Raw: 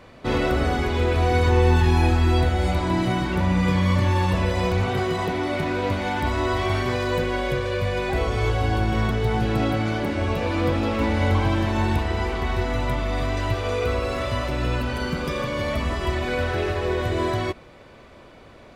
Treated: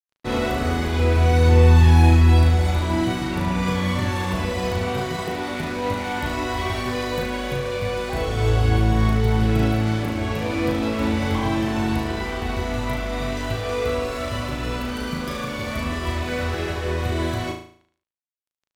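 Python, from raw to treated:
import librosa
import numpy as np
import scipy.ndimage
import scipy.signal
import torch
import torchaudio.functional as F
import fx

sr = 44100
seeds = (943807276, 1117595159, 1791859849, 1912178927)

p1 = fx.high_shelf(x, sr, hz=7900.0, db=6.5)
p2 = np.sign(p1) * np.maximum(np.abs(p1) - 10.0 ** (-36.5 / 20.0), 0.0)
p3 = p2 + fx.room_flutter(p2, sr, wall_m=6.3, rt60_s=0.52, dry=0)
y = p3 * librosa.db_to_amplitude(-1.0)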